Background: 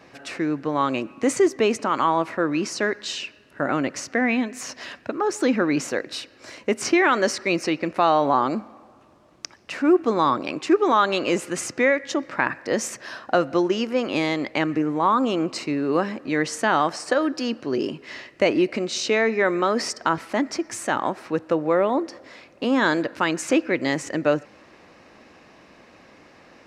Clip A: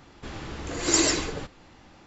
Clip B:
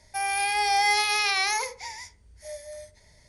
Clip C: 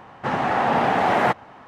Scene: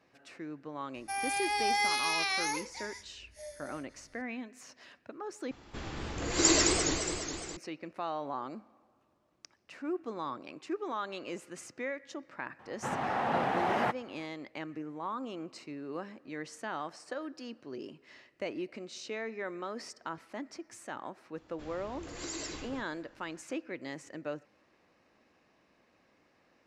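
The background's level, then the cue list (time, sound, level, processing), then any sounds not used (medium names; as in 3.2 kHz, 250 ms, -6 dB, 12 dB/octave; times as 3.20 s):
background -18 dB
0.94 s: add B -7 dB
5.51 s: replace with A -3 dB + modulated delay 208 ms, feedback 63%, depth 200 cents, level -5.5 dB
12.59 s: add C -11 dB
21.36 s: add A -12.5 dB + peak limiter -17.5 dBFS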